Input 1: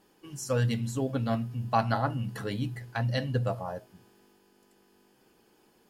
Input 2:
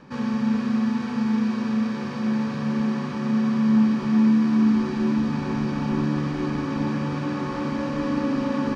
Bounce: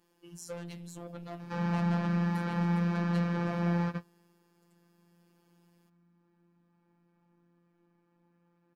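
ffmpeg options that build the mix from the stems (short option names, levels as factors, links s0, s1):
-filter_complex "[0:a]asoftclip=type=tanh:threshold=0.0355,volume=0.631,asplit=2[s0][s1];[1:a]acrossover=split=190|2600[s2][s3][s4];[s2]acompressor=threshold=0.0224:ratio=4[s5];[s3]acompressor=threshold=0.0794:ratio=4[s6];[s4]acompressor=threshold=0.00141:ratio=4[s7];[s5][s6][s7]amix=inputs=3:normalize=0,adelay=1400,volume=1.19[s8];[s1]apad=whole_len=447858[s9];[s8][s9]sidechaingate=range=0.00891:threshold=0.00178:ratio=16:detection=peak[s10];[s0][s10]amix=inputs=2:normalize=0,afftfilt=real='hypot(re,im)*cos(PI*b)':imag='0':win_size=1024:overlap=0.75"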